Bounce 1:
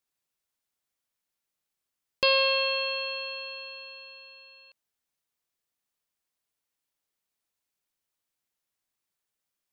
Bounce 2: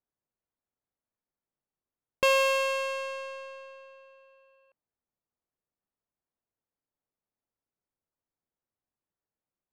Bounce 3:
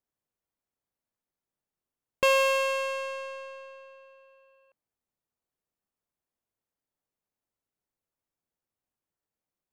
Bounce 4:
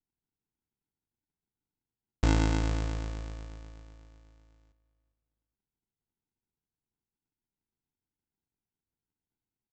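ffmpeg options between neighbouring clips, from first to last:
-af "lowpass=f=2800:w=0.5412,lowpass=f=2800:w=1.3066,adynamicsmooth=sensitivity=5:basefreq=1100,volume=1.26"
-af "equalizer=f=4300:w=1.5:g=-2,volume=1.12"
-filter_complex "[0:a]aresample=16000,acrusher=samples=27:mix=1:aa=0.000001,aresample=44100,asplit=2[s0][s1];[s1]adelay=405,lowpass=f=3700:p=1,volume=0.168,asplit=2[s2][s3];[s3]adelay=405,lowpass=f=3700:p=1,volume=0.26,asplit=2[s4][s5];[s5]adelay=405,lowpass=f=3700:p=1,volume=0.26[s6];[s0][s2][s4][s6]amix=inputs=4:normalize=0,volume=0.841"

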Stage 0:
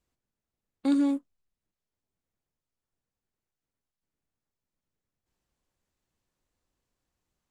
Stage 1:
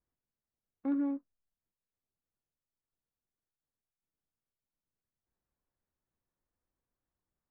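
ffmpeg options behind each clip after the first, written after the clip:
-af "lowpass=f=1900:w=0.5412,lowpass=f=1900:w=1.3066,volume=0.422"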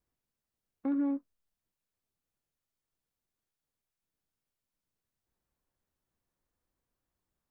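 -af "alimiter=level_in=1.5:limit=0.0631:level=0:latency=1:release=124,volume=0.668,volume=1.5"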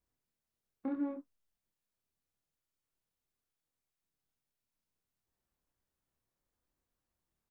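-filter_complex "[0:a]asplit=2[s0][s1];[s1]adelay=27,volume=0.668[s2];[s0][s2]amix=inputs=2:normalize=0,volume=0.668"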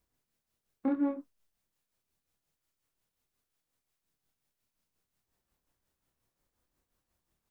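-af "tremolo=f=5.6:d=0.5,volume=2.51"

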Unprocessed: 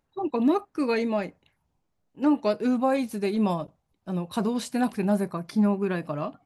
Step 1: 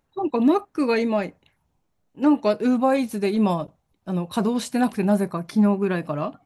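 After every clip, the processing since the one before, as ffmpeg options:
-af "bandreject=f=4800:w=21,volume=1.58"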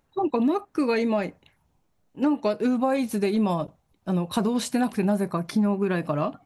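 -af "acompressor=threshold=0.0708:ratio=4,volume=1.33"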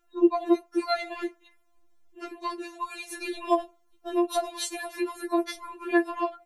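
-af "afftfilt=real='re*4*eq(mod(b,16),0)':imag='im*4*eq(mod(b,16),0)':win_size=2048:overlap=0.75,volume=1.33"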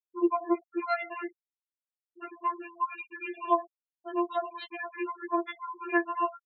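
-af "highpass=470,equalizer=f=470:t=q:w=4:g=6,equalizer=f=750:t=q:w=4:g=-6,equalizer=f=1100:t=q:w=4:g=5,lowpass=f=2900:w=0.5412,lowpass=f=2900:w=1.3066,afftfilt=real='re*gte(hypot(re,im),0.0178)':imag='im*gte(hypot(re,im),0.0178)':win_size=1024:overlap=0.75"

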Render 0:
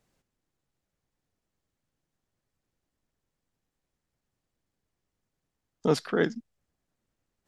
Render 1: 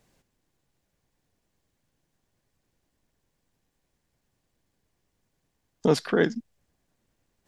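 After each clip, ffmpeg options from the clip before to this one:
-filter_complex "[0:a]bandreject=f=1300:w=12,asplit=2[s0][s1];[s1]acompressor=threshold=0.0282:ratio=6,volume=1.33[s2];[s0][s2]amix=inputs=2:normalize=0"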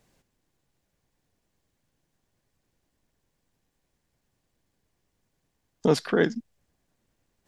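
-af anull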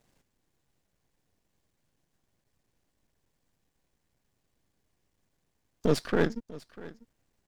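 -af "aeval=exprs='if(lt(val(0),0),0.251*val(0),val(0))':c=same,aecho=1:1:645:0.112"

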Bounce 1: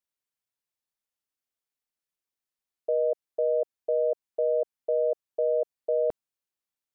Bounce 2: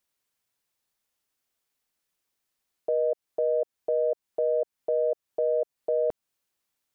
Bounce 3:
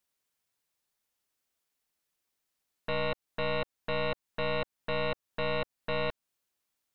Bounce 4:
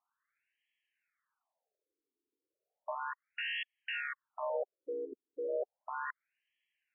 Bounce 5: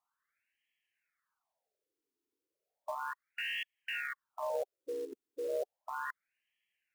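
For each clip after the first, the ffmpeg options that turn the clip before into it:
-af "acontrast=24,alimiter=limit=0.0708:level=0:latency=1:release=214,volume=1.68"
-af "aeval=exprs='0.126*(cos(1*acos(clip(val(0)/0.126,-1,1)))-cos(1*PI/2))+0.0447*(cos(4*acos(clip(val(0)/0.126,-1,1)))-cos(4*PI/2))+0.0562*(cos(7*acos(clip(val(0)/0.126,-1,1)))-cos(7*PI/2))':c=same,volume=0.376"
-af "volume=50.1,asoftclip=hard,volume=0.02,afftfilt=real='re*between(b*sr/1024,330*pow(2400/330,0.5+0.5*sin(2*PI*0.34*pts/sr))/1.41,330*pow(2400/330,0.5+0.5*sin(2*PI*0.34*pts/sr))*1.41)':imag='im*between(b*sr/1024,330*pow(2400/330,0.5+0.5*sin(2*PI*0.34*pts/sr))/1.41,330*pow(2400/330,0.5+0.5*sin(2*PI*0.34*pts/sr))*1.41)':win_size=1024:overlap=0.75,volume=2.66"
-af "acrusher=bits=5:mode=log:mix=0:aa=0.000001"

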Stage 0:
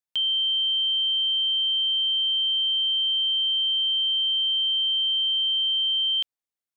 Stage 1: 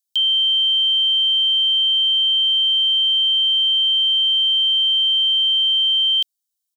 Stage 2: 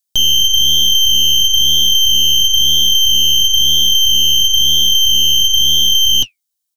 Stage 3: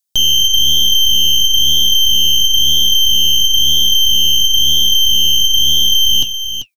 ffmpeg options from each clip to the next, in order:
-af "aecho=1:1:1.3:0.42,aexciter=amount=8.5:drive=2.7:freq=3100,volume=0.422"
-af "flanger=delay=5.3:depth=8.3:regen=-57:speed=1:shape=sinusoidal,aeval=exprs='0.188*(cos(1*acos(clip(val(0)/0.188,-1,1)))-cos(1*PI/2))+0.0473*(cos(4*acos(clip(val(0)/0.188,-1,1)))-cos(4*PI/2))+0.015*(cos(8*acos(clip(val(0)/0.188,-1,1)))-cos(8*PI/2))':c=same,volume=2.66"
-af "aecho=1:1:390:0.316"

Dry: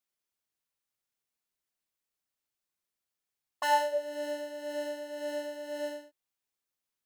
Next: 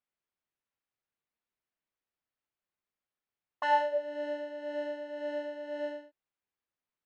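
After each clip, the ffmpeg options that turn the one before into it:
-af "lowpass=2600"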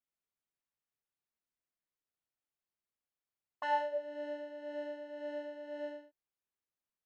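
-af "lowshelf=f=420:g=3,volume=0.473"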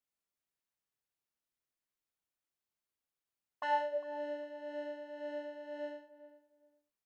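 -filter_complex "[0:a]asplit=2[s0][s1];[s1]adelay=404,lowpass=f=1200:p=1,volume=0.2,asplit=2[s2][s3];[s3]adelay=404,lowpass=f=1200:p=1,volume=0.22[s4];[s0][s2][s4]amix=inputs=3:normalize=0"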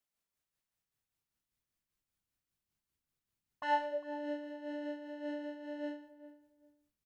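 -filter_complex "[0:a]tremolo=f=5.1:d=0.42,asubboost=boost=6:cutoff=240,asplit=2[s0][s1];[s1]adelay=100,highpass=300,lowpass=3400,asoftclip=type=hard:threshold=0.0282,volume=0.0708[s2];[s0][s2]amix=inputs=2:normalize=0,volume=1.5"

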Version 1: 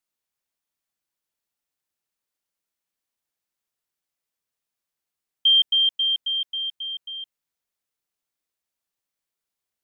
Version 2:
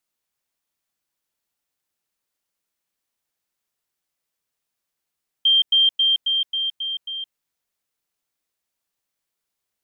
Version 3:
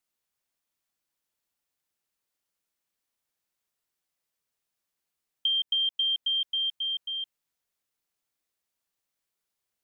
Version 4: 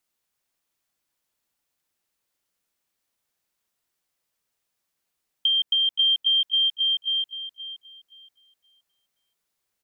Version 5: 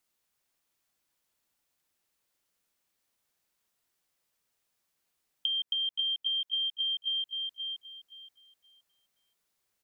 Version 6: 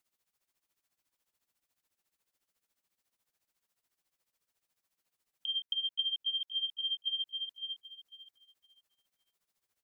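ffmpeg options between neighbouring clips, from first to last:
-af "alimiter=limit=0.15:level=0:latency=1:release=111,volume=1.58"
-af "acompressor=threshold=0.0794:ratio=6,volume=0.708"
-filter_complex "[0:a]asplit=2[s0][s1];[s1]adelay=523,lowpass=f=3100:p=1,volume=0.376,asplit=2[s2][s3];[s3]adelay=523,lowpass=f=3100:p=1,volume=0.32,asplit=2[s4][s5];[s5]adelay=523,lowpass=f=3100:p=1,volume=0.32,asplit=2[s6][s7];[s7]adelay=523,lowpass=f=3100:p=1,volume=0.32[s8];[s0][s2][s4][s6][s8]amix=inputs=5:normalize=0,volume=1.68"
-af "acompressor=threshold=0.0316:ratio=6"
-af "tremolo=f=14:d=0.79"

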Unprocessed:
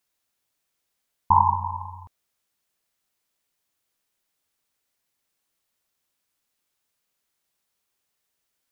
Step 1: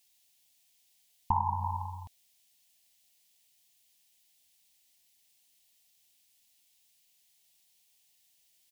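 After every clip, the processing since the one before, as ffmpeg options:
-af "firequalizer=gain_entry='entry(210,0);entry(480,-9);entry(710,3);entry(1300,-15);entry(1800,1);entry(2900,10)':delay=0.05:min_phase=1,acompressor=threshold=0.0562:ratio=6"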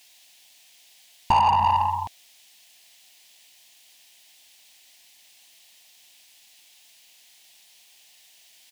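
-filter_complex "[0:a]asplit=2[s0][s1];[s1]highpass=f=720:p=1,volume=15.8,asoftclip=type=tanh:threshold=0.178[s2];[s0][s2]amix=inputs=2:normalize=0,lowpass=f=2800:p=1,volume=0.501,volume=1.68"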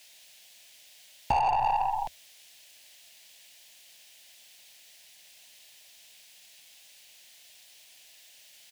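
-af "acompressor=threshold=0.0501:ratio=2.5,afreqshift=-78"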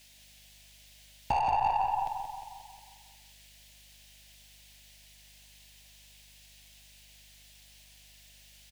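-filter_complex "[0:a]aeval=exprs='val(0)+0.000708*(sin(2*PI*50*n/s)+sin(2*PI*2*50*n/s)/2+sin(2*PI*3*50*n/s)/3+sin(2*PI*4*50*n/s)/4+sin(2*PI*5*50*n/s)/5)':c=same,asplit=2[s0][s1];[s1]adelay=179,lowpass=f=4500:p=1,volume=0.473,asplit=2[s2][s3];[s3]adelay=179,lowpass=f=4500:p=1,volume=0.55,asplit=2[s4][s5];[s5]adelay=179,lowpass=f=4500:p=1,volume=0.55,asplit=2[s6][s7];[s7]adelay=179,lowpass=f=4500:p=1,volume=0.55,asplit=2[s8][s9];[s9]adelay=179,lowpass=f=4500:p=1,volume=0.55,asplit=2[s10][s11];[s11]adelay=179,lowpass=f=4500:p=1,volume=0.55,asplit=2[s12][s13];[s13]adelay=179,lowpass=f=4500:p=1,volume=0.55[s14];[s2][s4][s6][s8][s10][s12][s14]amix=inputs=7:normalize=0[s15];[s0][s15]amix=inputs=2:normalize=0,volume=0.708"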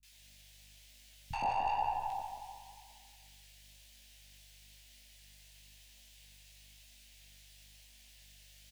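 -filter_complex "[0:a]acrossover=split=170|910[s0][s1][s2];[s2]adelay=30[s3];[s1]adelay=120[s4];[s0][s4][s3]amix=inputs=3:normalize=0,flanger=delay=16:depth=5.9:speed=1"

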